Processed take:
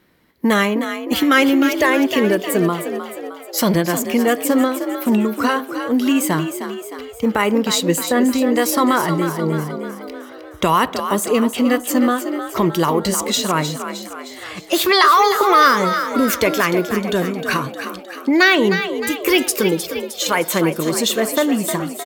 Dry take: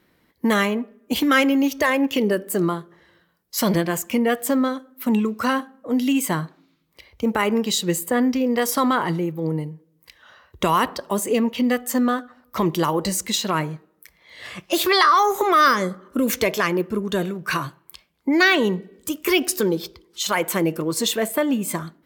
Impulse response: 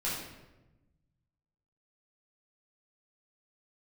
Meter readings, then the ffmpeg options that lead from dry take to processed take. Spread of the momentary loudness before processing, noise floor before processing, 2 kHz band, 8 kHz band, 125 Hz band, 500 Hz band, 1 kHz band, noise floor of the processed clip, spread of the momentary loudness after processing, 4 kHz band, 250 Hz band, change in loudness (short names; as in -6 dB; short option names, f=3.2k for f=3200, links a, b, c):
11 LU, -63 dBFS, +4.5 dB, +4.0 dB, +3.5 dB, +4.5 dB, +4.0 dB, -36 dBFS, 14 LU, +4.0 dB, +4.0 dB, +4.0 dB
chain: -filter_complex "[0:a]asplit=7[a][b][c][d][e][f][g];[b]adelay=309,afreqshift=52,volume=-9dB[h];[c]adelay=618,afreqshift=104,volume=-14.2dB[i];[d]adelay=927,afreqshift=156,volume=-19.4dB[j];[e]adelay=1236,afreqshift=208,volume=-24.6dB[k];[f]adelay=1545,afreqshift=260,volume=-29.8dB[l];[g]adelay=1854,afreqshift=312,volume=-35dB[m];[a][h][i][j][k][l][m]amix=inputs=7:normalize=0,volume=3.5dB"